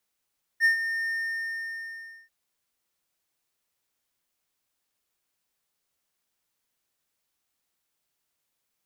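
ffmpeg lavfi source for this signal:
-f lavfi -i "aevalsrc='0.2*(1-4*abs(mod(1820*t+0.25,1)-0.5))':d=1.69:s=44100,afade=t=in:d=0.048,afade=t=out:st=0.048:d=0.112:silence=0.299,afade=t=out:st=0.49:d=1.2"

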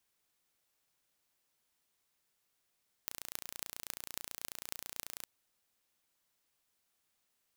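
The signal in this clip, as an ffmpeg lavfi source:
-f lavfi -i "aevalsrc='0.335*eq(mod(n,1510),0)*(0.5+0.5*eq(mod(n,12080),0))':d=2.16:s=44100"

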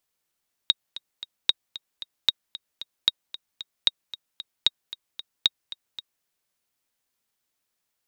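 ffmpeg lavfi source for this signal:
-f lavfi -i "aevalsrc='pow(10,(-4.5-17*gte(mod(t,3*60/227),60/227))/20)*sin(2*PI*3770*mod(t,60/227))*exp(-6.91*mod(t,60/227)/0.03)':d=5.55:s=44100"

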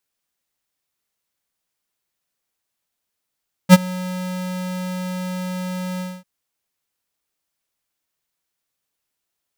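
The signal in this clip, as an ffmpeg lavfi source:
-f lavfi -i "aevalsrc='0.668*(2*lt(mod(183*t,1),0.5)-1)':d=2.545:s=44100,afade=t=in:d=0.046,afade=t=out:st=0.046:d=0.03:silence=0.0708,afade=t=out:st=2.31:d=0.235"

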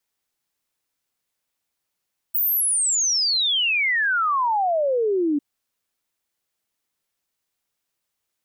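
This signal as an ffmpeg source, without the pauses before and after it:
-f lavfi -i "aevalsrc='0.126*clip(min(t,3.05-t)/0.01,0,1)*sin(2*PI*16000*3.05/log(280/16000)*(exp(log(280/16000)*t/3.05)-1))':d=3.05:s=44100"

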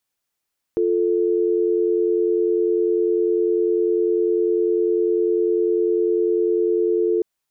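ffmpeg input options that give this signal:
-f lavfi -i "aevalsrc='0.112*(sin(2*PI*350*t)+sin(2*PI*440*t))':d=6.45:s=44100"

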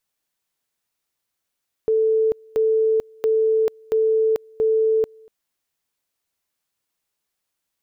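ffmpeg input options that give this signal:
-f lavfi -i "aevalsrc='pow(10,(-15-29*gte(mod(t,0.68),0.44))/20)*sin(2*PI*441*t)':d=3.4:s=44100"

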